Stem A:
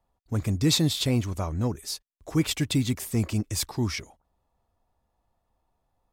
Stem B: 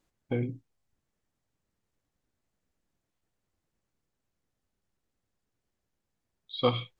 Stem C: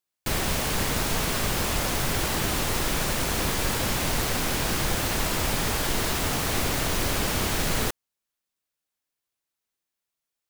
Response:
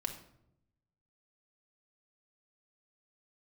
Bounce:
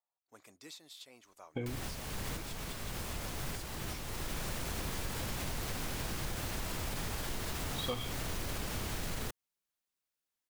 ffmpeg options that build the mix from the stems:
-filter_complex "[0:a]highpass=630,alimiter=limit=0.0794:level=0:latency=1:release=461,volume=0.141,asplit=2[s0][s1];[1:a]highshelf=f=3700:g=11,adelay=1250,volume=0.631[s2];[2:a]alimiter=limit=0.141:level=0:latency=1,acrossover=split=170[s3][s4];[s4]acompressor=threshold=0.0316:ratio=6[s5];[s3][s5]amix=inputs=2:normalize=0,adelay=1400,volume=0.596[s6];[s1]apad=whole_len=524570[s7];[s6][s7]sidechaincompress=threshold=0.002:ratio=8:attack=16:release=738[s8];[s0][s2][s8]amix=inputs=3:normalize=0,acompressor=threshold=0.02:ratio=4"

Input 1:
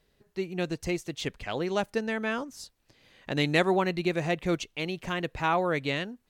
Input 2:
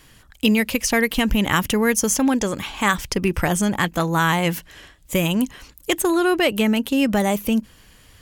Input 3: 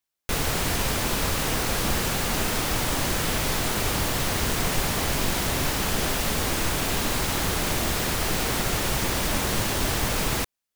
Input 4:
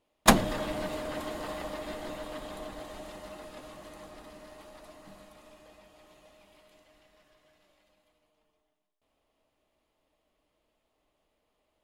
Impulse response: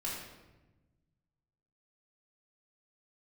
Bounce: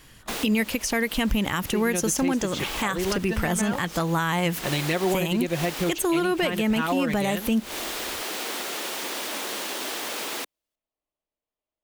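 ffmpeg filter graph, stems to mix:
-filter_complex "[0:a]aecho=1:1:5.6:0.67,adelay=1350,volume=1.19[s0];[1:a]volume=0.944,asplit=2[s1][s2];[2:a]highpass=f=280:w=0.5412,highpass=f=280:w=1.3066,equalizer=f=3300:w=1.5:g=3.5,volume=0.562[s3];[3:a]volume=0.133[s4];[s2]apad=whole_len=474310[s5];[s3][s5]sidechaincompress=threshold=0.0224:ratio=6:attack=23:release=153[s6];[s0][s1][s6][s4]amix=inputs=4:normalize=0,alimiter=limit=0.188:level=0:latency=1:release=150"

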